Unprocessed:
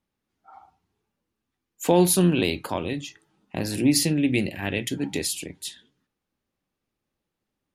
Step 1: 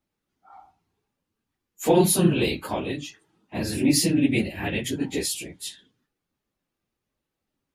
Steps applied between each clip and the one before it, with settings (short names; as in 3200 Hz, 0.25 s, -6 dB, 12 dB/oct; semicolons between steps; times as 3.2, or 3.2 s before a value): phase scrambler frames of 50 ms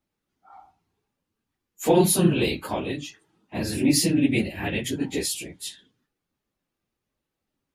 nothing audible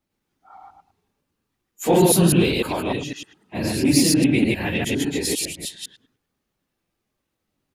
reverse delay 0.101 s, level 0 dB; in parallel at -12 dB: soft clip -21 dBFS, distortion -7 dB; on the sum: speakerphone echo 0.11 s, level -18 dB